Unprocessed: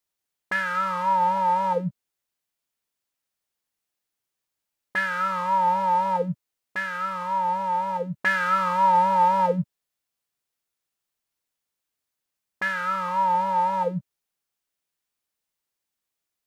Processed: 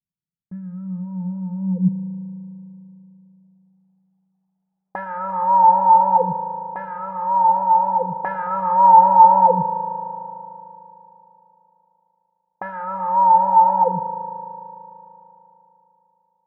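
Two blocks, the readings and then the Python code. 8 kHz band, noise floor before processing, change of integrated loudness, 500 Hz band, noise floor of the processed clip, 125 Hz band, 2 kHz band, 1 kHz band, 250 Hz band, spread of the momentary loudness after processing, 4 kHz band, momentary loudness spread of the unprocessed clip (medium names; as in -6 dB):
no reading, -85 dBFS, +7.0 dB, +3.5 dB, -75 dBFS, +6.0 dB, -12.0 dB, +8.0 dB, +7.0 dB, 22 LU, under -25 dB, 10 LU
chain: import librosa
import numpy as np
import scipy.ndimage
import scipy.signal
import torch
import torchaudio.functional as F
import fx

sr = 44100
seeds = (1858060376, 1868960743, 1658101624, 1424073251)

y = fx.filter_sweep_lowpass(x, sr, from_hz=170.0, to_hz=810.0, start_s=1.56, end_s=3.8, q=6.7)
y = fx.dereverb_blind(y, sr, rt60_s=0.68)
y = fx.rev_spring(y, sr, rt60_s=3.3, pass_ms=(37,), chirp_ms=75, drr_db=9.0)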